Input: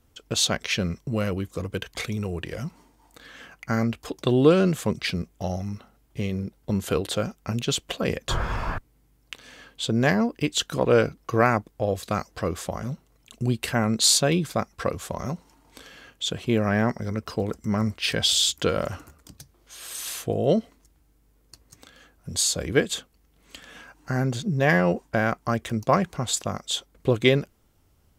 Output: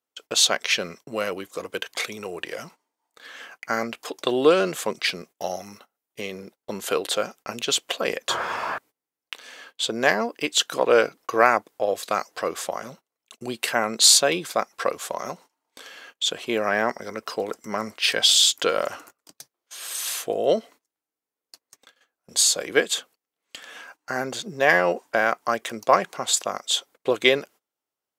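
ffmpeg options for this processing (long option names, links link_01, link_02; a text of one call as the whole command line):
ffmpeg -i in.wav -filter_complex "[0:a]asettb=1/sr,asplit=3[link_01][link_02][link_03];[link_01]atrim=end=5.374[link_04];[link_02]atrim=start=5.37:end=6.21,asetpts=PTS-STARTPTS,afade=type=in:duration=0.004:curve=qsin,afade=type=out:start_time=0.836:duration=0.004:curve=qsin,highshelf=frequency=8600:gain=8.5[link_05];[link_03]atrim=start=6.206[link_06];[link_04][link_05]acrossfade=duration=0.004:curve1=hsin:curve2=qsin[link_07];[link_07][link_06]acrossfade=duration=0.004:curve1=qsin:curve2=hsin,highpass=480,agate=range=-22dB:threshold=-50dB:ratio=16:detection=peak,volume=4.5dB" out.wav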